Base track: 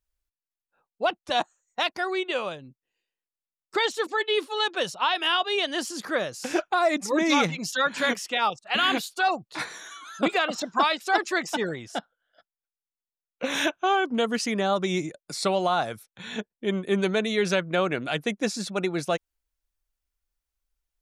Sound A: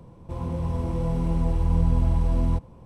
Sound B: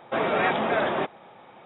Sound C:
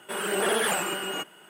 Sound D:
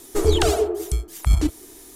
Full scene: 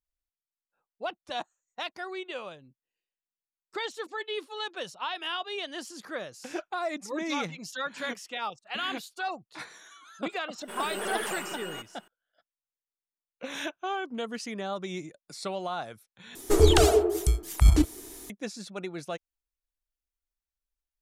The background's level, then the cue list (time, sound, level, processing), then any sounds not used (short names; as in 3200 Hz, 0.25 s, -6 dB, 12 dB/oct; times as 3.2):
base track -9.5 dB
10.59 add C -7 dB + half-wave gain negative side -3 dB
16.35 replace with D -0.5 dB
not used: A, B